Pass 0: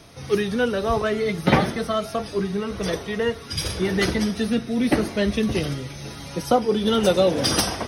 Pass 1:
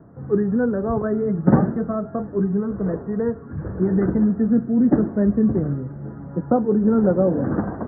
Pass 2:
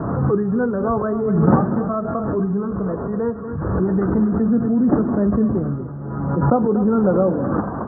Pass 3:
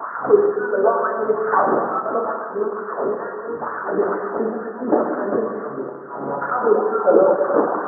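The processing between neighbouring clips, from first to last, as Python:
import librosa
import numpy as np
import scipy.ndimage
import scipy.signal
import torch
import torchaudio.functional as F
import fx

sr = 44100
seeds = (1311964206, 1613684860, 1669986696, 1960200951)

y1 = scipy.signal.sosfilt(scipy.signal.butter(12, 1700.0, 'lowpass', fs=sr, output='sos'), x)
y1 = fx.peak_eq(y1, sr, hz=200.0, db=13.5, octaves=2.6)
y1 = F.gain(torch.from_numpy(y1), -7.5).numpy()
y2 = fx.lowpass_res(y1, sr, hz=1200.0, q=2.6)
y2 = y2 + 10.0 ** (-12.5 / 20.0) * np.pad(y2, (int(242 * sr / 1000.0), 0))[:len(y2)]
y2 = fx.pre_swell(y2, sr, db_per_s=32.0)
y2 = F.gain(torch.from_numpy(y2), -1.0).numpy()
y3 = fx.filter_lfo_highpass(y2, sr, shape='sine', hz=2.2, low_hz=400.0, high_hz=1600.0, q=2.6)
y3 = fx.rev_gated(y3, sr, seeds[0], gate_ms=470, shape='falling', drr_db=-1.5)
y3 = fx.hpss(y3, sr, part='percussive', gain_db=9)
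y3 = F.gain(torch.from_numpy(y3), -6.0).numpy()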